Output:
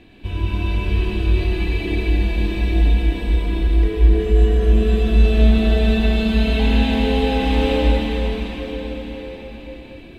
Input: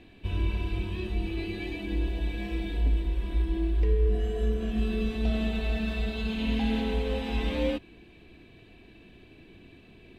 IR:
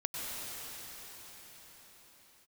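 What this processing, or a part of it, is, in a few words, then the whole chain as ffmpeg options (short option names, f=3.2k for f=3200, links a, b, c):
cathedral: -filter_complex "[1:a]atrim=start_sample=2205[a];[0:a][a]afir=irnorm=-1:irlink=0,volume=6.5dB"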